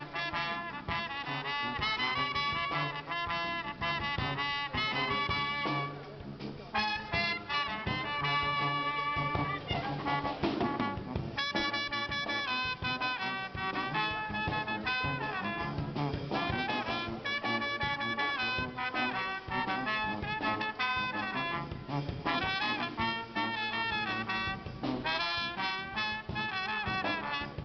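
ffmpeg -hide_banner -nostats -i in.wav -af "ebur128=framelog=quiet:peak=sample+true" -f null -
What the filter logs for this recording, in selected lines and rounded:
Integrated loudness:
  I:         -32.8 LUFS
  Threshold: -42.9 LUFS
Loudness range:
  LRA:         1.2 LU
  Threshold: -52.8 LUFS
  LRA low:   -33.3 LUFS
  LRA high:  -32.2 LUFS
Sample peak:
  Peak:      -15.9 dBFS
True peak:
  Peak:      -15.9 dBFS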